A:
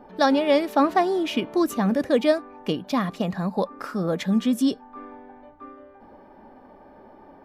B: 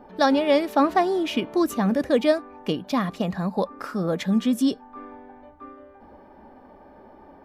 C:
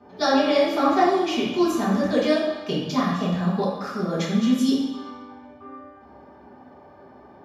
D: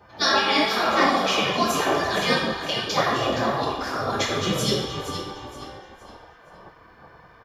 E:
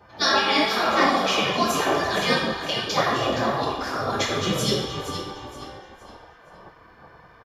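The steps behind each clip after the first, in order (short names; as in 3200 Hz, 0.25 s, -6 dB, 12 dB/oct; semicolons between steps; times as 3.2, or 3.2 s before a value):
bell 67 Hz +9 dB 0.29 oct
HPF 89 Hz; reverb RT60 1.1 s, pre-delay 3 ms, DRR -8.5 dB; gain -5.5 dB
frequency-shifting echo 0.468 s, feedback 34%, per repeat -38 Hz, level -10 dB; spectral gate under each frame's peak -10 dB weak; gain +7 dB
downsampling 32000 Hz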